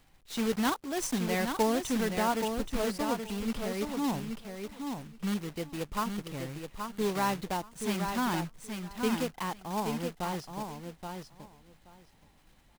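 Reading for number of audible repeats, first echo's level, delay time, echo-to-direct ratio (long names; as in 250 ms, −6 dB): 2, −6.0 dB, 826 ms, −6.0 dB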